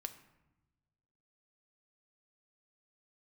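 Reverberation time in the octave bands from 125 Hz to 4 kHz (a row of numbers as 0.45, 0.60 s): 1.8, 1.5, 1.1, 1.0, 0.85, 0.60 s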